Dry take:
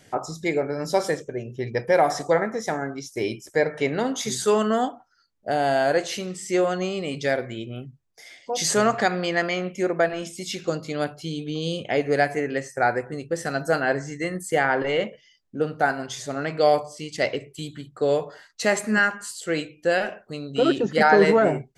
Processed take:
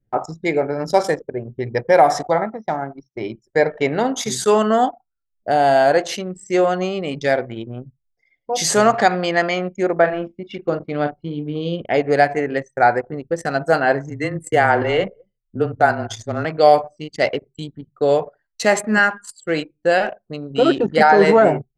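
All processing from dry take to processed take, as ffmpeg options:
-filter_complex "[0:a]asettb=1/sr,asplit=3[s0][s1][s2];[s0]atrim=end=2.274[s3];[s1]atrim=start=2.27:end=3.42,asetpts=PTS-STARTPTS,afade=t=in:d=0.004:c=qsin,afade=t=out:st=1.146:d=0.004:c=qsin,acrossover=split=3400[s4][s5];[s5]acompressor=threshold=0.00631:ratio=4:attack=1:release=60[s6];[s4][s6]amix=inputs=2:normalize=0,highpass=110,equalizer=f=260:t=q:w=4:g=-5,equalizer=f=450:t=q:w=4:g=-10,equalizer=f=1700:t=q:w=4:g=-8,equalizer=f=2600:t=q:w=4:g=-5,lowpass=f=6200:w=0.5412,lowpass=f=6200:w=1.3066[s7];[s2]atrim=start=3.416[s8];[s3][s7]acrossfade=d=0.004:c1=hsin:c2=qsin[s9];[s9][s8]acrossfade=d=0.004:c1=qsin:c2=hsin,asettb=1/sr,asplit=3[s10][s11][s12];[s10]atrim=end=9.964[s13];[s11]atrim=start=9.96:end=11.94,asetpts=PTS-STARTPTS,afade=t=in:d=0.004:c=qsin,afade=t=out:st=1.976:d=0.004:c=qsin,lowpass=2900,asplit=2[s14][s15];[s15]adelay=41,volume=0.355[s16];[s14][s16]amix=inputs=2:normalize=0,atrim=end_sample=87318[s17];[s12]atrim=start=11.936[s18];[s13][s17]acrossfade=d=0.004:c1=hsin:c2=qsin[s19];[s19][s18]acrossfade=d=0.004:c1=qsin:c2=hsin,asettb=1/sr,asplit=3[s20][s21][s22];[s20]atrim=end=14.104[s23];[s21]atrim=start=14.1:end=16.45,asetpts=PTS-STARTPTS,afade=t=in:d=0.004:c=qsin,afade=t=out:st=2.346:d=0.004:c=qsin,equalizer=f=130:t=o:w=0.25:g=9.5,afreqshift=-20,aecho=1:1:213:0.075,atrim=end_sample=103635[s24];[s22]atrim=start=16.446[s25];[s23][s24]acrossfade=d=0.004:c1=hsin:c2=qsin[s26];[s26][s25]acrossfade=d=0.004:c1=qsin:c2=hsin,adynamicequalizer=threshold=0.0224:dfrequency=790:dqfactor=1.9:tfrequency=790:tqfactor=1.9:attack=5:release=100:ratio=0.375:range=2.5:mode=boostabove:tftype=bell,anlmdn=15.8,alimiter=level_in=1.78:limit=0.891:release=50:level=0:latency=1,volume=0.891"

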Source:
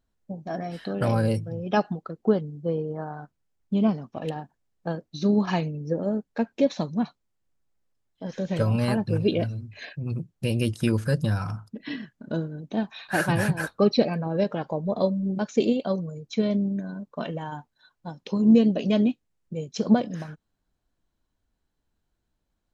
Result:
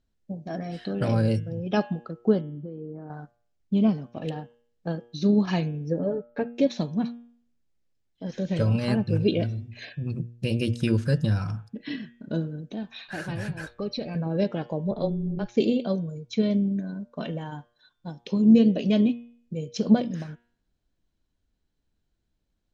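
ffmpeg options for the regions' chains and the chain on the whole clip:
-filter_complex "[0:a]asettb=1/sr,asplit=3[s0][s1][s2];[s0]atrim=end=2.414[s3];[s1]atrim=start=2.41:end=3.1,asetpts=PTS-STARTPTS,afade=t=in:d=0.004:c=qsin,afade=t=out:st=0.686:d=0.004:c=qsin,lowpass=f=2200:p=1,acompressor=threshold=0.0126:ratio=20:attack=3.2:release=140:knee=1:detection=peak,equalizer=f=280:t=o:w=1.4:g=9[s4];[s2]atrim=start=3.096[s5];[s3][s4]acrossfade=d=0.004:c1=hsin:c2=qsin[s6];[s6][s5]acrossfade=d=0.004:c1=qsin:c2=hsin,asettb=1/sr,asplit=3[s7][s8][s9];[s7]atrim=end=5.994[s10];[s8]atrim=start=5.99:end=6.55,asetpts=PTS-STARTPTS,afade=t=in:d=0.004:c=qsin,afade=t=out:st=0.556:d=0.004:c=qsin,lowpass=2400,aecho=1:1:6.9:0.76,atrim=end_sample=24696[s11];[s9]atrim=start=6.546[s12];[s10][s11]acrossfade=d=0.004:c1=hsin:c2=qsin[s13];[s13][s12]acrossfade=d=0.004:c1=qsin:c2=hsin,asettb=1/sr,asplit=3[s14][s15][s16];[s14]atrim=end=12.614[s17];[s15]atrim=start=12.61:end=14.15,asetpts=PTS-STARTPTS,afade=t=in:d=0.004:c=qsin,afade=t=out:st=1.536:d=0.004:c=qsin,asubboost=boost=8.5:cutoff=92,acompressor=threshold=0.02:ratio=2:attack=3.2:release=140:knee=1:detection=peak[s18];[s16]atrim=start=14.146[s19];[s17][s18]acrossfade=d=0.004:c1=hsin:c2=qsin[s20];[s20][s19]acrossfade=d=0.004:c1=qsin:c2=hsin,asettb=1/sr,asplit=3[s21][s22][s23];[s21]atrim=end=14.914[s24];[s22]atrim=start=14.91:end=15.57,asetpts=PTS-STARTPTS,afade=t=in:d=0.004:c=qsin,afade=t=out:st=0.656:d=0.004:c=qsin,lowpass=4300,tremolo=f=200:d=0.621,afreqshift=-17[s25];[s23]atrim=start=15.566[s26];[s24][s25]acrossfade=d=0.004:c1=hsin:c2=qsin[s27];[s27][s26]acrossfade=d=0.004:c1=qsin:c2=hsin,lowpass=6600,equalizer=f=1000:w=0.89:g=-7,bandreject=f=118.6:t=h:w=4,bandreject=f=237.2:t=h:w=4,bandreject=f=355.8:t=h:w=4,bandreject=f=474.4:t=h:w=4,bandreject=f=593:t=h:w=4,bandreject=f=711.6:t=h:w=4,bandreject=f=830.2:t=h:w=4,bandreject=f=948.8:t=h:w=4,bandreject=f=1067.4:t=h:w=4,bandreject=f=1186:t=h:w=4,bandreject=f=1304.6:t=h:w=4,bandreject=f=1423.2:t=h:w=4,bandreject=f=1541.8:t=h:w=4,bandreject=f=1660.4:t=h:w=4,bandreject=f=1779:t=h:w=4,bandreject=f=1897.6:t=h:w=4,bandreject=f=2016.2:t=h:w=4,bandreject=f=2134.8:t=h:w=4,bandreject=f=2253.4:t=h:w=4,bandreject=f=2372:t=h:w=4,bandreject=f=2490.6:t=h:w=4,bandreject=f=2609.2:t=h:w=4,bandreject=f=2727.8:t=h:w=4,bandreject=f=2846.4:t=h:w=4,bandreject=f=2965:t=h:w=4,bandreject=f=3083.6:t=h:w=4,bandreject=f=3202.2:t=h:w=4,bandreject=f=3320.8:t=h:w=4,bandreject=f=3439.4:t=h:w=4,bandreject=f=3558:t=h:w=4,bandreject=f=3676.6:t=h:w=4,volume=1.19"

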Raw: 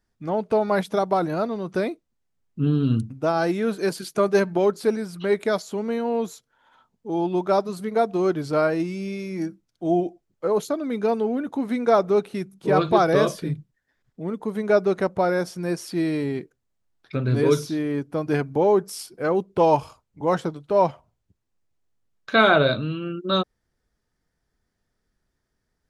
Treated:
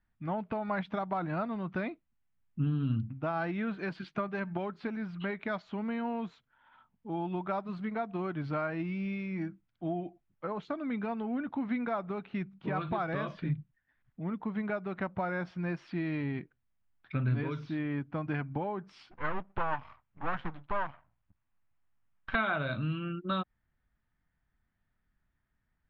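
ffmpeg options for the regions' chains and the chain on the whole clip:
-filter_complex "[0:a]asettb=1/sr,asplit=3[s0][s1][s2];[s0]atrim=end=19.114[s3];[s1]atrim=start=19.11:end=22.35,asetpts=PTS-STARTPTS,afade=t=in:d=0.004:c=qsin,afade=t=out:st=3.236:d=0.004:c=qsin,aeval=exprs='max(val(0),0)':c=same,equalizer=f=1100:w=0.65:g=5.5[s4];[s2]atrim=start=22.346[s5];[s3][s4]acrossfade=d=0.004:c1=hsin:c2=qsin[s6];[s6][s5]acrossfade=d=0.004:c1=qsin:c2=hsin,acompressor=threshold=0.0794:ratio=10,lowpass=f=2900:w=0.5412,lowpass=f=2900:w=1.3066,equalizer=f=440:t=o:w=1:g=-13.5,volume=0.841"

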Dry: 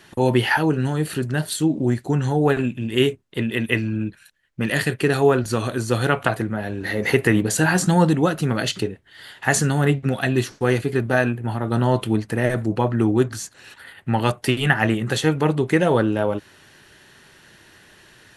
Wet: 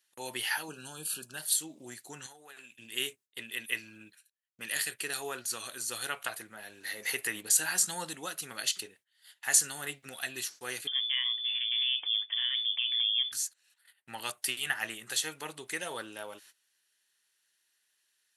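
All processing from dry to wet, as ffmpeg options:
-filter_complex "[0:a]asettb=1/sr,asplit=3[s0][s1][s2];[s0]atrim=end=0.684[s3];[s1]atrim=start=0.68:end=1.37,asetpts=PTS-STARTPTS,afade=t=in:d=0.004:c=qsin,afade=t=out:st=0.686:d=0.004:c=qsin,asuperstop=centerf=2000:order=12:qfactor=3,equalizer=f=180:w=2.8:g=8.5[s4];[s2]atrim=start=1.366[s5];[s3][s4]acrossfade=d=0.004:c1=hsin:c2=qsin[s6];[s6][s5]acrossfade=d=0.004:c1=qsin:c2=hsin,asettb=1/sr,asplit=3[s7][s8][s9];[s7]atrim=end=2.264[s10];[s8]atrim=start=2.26:end=2.79,asetpts=PTS-STARTPTS,afade=t=in:d=0.004:c=qsin,afade=t=out:st=0.526:d=0.004:c=qsin,lowshelf=f=420:g=-10,acompressor=threshold=0.0355:ratio=8:attack=3.2:release=140:knee=1:detection=peak[s11];[s9]atrim=start=2.786[s12];[s10][s11]acrossfade=d=0.004:c1=hsin:c2=qsin[s13];[s13][s12]acrossfade=d=0.004:c1=qsin:c2=hsin,asettb=1/sr,asplit=3[s14][s15][s16];[s14]atrim=end=10.874[s17];[s15]atrim=start=10.87:end=13.32,asetpts=PTS-STARTPTS,afade=t=in:d=0.004:c=qsin,afade=t=out:st=2.446:d=0.004:c=qsin,acompressor=threshold=0.1:ratio=2.5:attack=3.2:release=140:knee=1:detection=peak,lowpass=f=3100:t=q:w=0.5098,lowpass=f=3100:t=q:w=0.6013,lowpass=f=3100:t=q:w=0.9,lowpass=f=3100:t=q:w=2.563,afreqshift=-3600[s18];[s16]atrim=start=13.316[s19];[s17][s18]acrossfade=d=0.004:c1=hsin:c2=qsin[s20];[s20][s19]acrossfade=d=0.004:c1=qsin:c2=hsin,agate=range=0.126:threshold=0.0112:ratio=16:detection=peak,aderivative"

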